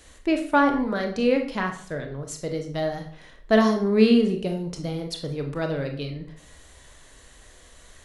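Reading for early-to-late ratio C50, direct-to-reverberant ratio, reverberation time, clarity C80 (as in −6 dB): 8.5 dB, 4.0 dB, 0.55 s, 12.5 dB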